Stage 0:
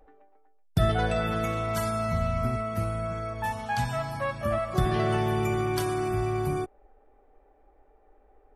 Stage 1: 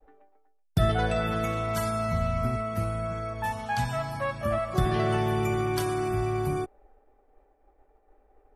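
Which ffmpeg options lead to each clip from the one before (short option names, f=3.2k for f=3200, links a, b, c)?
-af "agate=range=-33dB:threshold=-55dB:ratio=3:detection=peak"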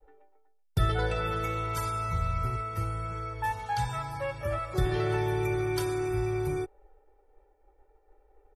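-af "aecho=1:1:2.2:0.84,volume=-4.5dB"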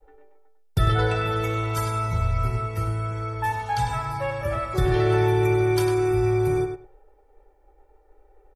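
-filter_complex "[0:a]asplit=2[a][b];[b]adelay=100,lowpass=f=3.2k:p=1,volume=-5dB,asplit=2[c][d];[d]adelay=100,lowpass=f=3.2k:p=1,volume=0.16,asplit=2[e][f];[f]adelay=100,lowpass=f=3.2k:p=1,volume=0.16[g];[a][c][e][g]amix=inputs=4:normalize=0,volume=4.5dB"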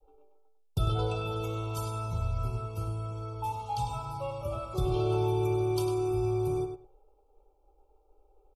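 -af "asuperstop=centerf=1800:order=8:qfactor=1.5,volume=-7.5dB"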